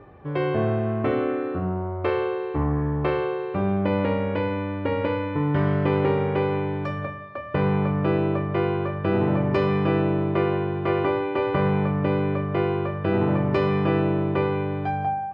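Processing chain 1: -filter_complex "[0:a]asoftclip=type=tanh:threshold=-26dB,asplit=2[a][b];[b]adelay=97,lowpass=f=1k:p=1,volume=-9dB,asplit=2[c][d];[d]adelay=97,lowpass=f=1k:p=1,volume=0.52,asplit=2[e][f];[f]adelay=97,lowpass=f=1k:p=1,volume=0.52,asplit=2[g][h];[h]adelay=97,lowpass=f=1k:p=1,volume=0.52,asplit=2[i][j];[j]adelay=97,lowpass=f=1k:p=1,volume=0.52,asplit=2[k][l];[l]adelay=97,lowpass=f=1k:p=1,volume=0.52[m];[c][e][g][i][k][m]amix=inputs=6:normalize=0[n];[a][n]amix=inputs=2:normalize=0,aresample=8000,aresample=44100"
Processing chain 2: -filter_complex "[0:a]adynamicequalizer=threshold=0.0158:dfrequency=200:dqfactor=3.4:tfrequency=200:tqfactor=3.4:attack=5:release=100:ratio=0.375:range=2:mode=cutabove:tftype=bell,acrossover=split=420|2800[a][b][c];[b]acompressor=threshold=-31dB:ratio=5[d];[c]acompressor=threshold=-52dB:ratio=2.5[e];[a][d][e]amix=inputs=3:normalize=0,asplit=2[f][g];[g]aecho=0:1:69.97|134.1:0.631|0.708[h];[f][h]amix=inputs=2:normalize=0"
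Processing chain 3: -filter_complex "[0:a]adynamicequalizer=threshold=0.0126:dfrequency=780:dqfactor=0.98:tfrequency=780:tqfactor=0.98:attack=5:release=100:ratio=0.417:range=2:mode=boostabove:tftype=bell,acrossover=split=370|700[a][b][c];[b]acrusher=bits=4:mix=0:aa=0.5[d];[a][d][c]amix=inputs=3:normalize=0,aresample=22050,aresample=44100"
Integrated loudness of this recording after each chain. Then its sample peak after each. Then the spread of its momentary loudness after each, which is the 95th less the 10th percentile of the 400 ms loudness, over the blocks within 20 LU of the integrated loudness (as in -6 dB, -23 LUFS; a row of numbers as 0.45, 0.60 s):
-28.5, -24.5, -23.0 LUFS; -21.5, -9.0, -7.5 dBFS; 3, 5, 5 LU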